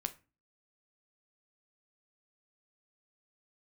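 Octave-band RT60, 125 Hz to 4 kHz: 0.50, 0.45, 0.30, 0.30, 0.30, 0.25 s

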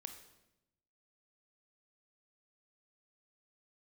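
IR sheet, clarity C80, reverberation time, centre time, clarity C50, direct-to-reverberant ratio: 11.0 dB, 0.90 s, 17 ms, 8.5 dB, 6.5 dB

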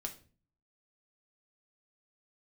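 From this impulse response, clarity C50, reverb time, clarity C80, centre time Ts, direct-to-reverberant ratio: 12.5 dB, 0.40 s, 18.0 dB, 10 ms, 2.5 dB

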